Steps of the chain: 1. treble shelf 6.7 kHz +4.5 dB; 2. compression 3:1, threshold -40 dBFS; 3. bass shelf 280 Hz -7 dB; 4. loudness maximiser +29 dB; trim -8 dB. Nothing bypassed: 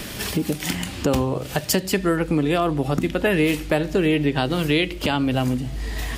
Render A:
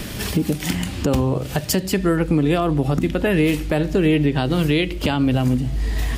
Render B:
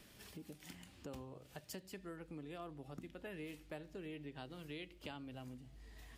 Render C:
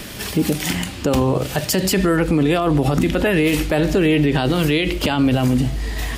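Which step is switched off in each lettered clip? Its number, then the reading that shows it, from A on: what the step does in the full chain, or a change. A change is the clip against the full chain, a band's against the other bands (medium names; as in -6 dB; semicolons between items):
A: 3, 125 Hz band +5.0 dB; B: 4, crest factor change +5.5 dB; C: 2, mean gain reduction 10.5 dB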